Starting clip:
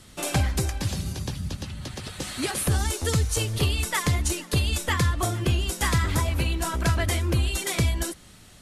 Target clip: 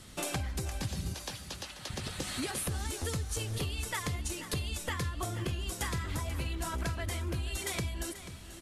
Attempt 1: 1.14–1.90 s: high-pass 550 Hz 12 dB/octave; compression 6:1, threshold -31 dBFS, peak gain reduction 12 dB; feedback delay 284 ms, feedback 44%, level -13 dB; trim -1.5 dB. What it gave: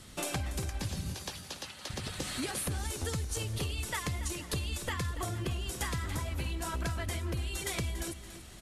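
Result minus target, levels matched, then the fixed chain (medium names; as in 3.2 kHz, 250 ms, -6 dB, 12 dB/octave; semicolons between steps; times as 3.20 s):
echo 203 ms early
1.14–1.90 s: high-pass 550 Hz 12 dB/octave; compression 6:1, threshold -31 dBFS, peak gain reduction 12 dB; feedback delay 487 ms, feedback 44%, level -13 dB; trim -1.5 dB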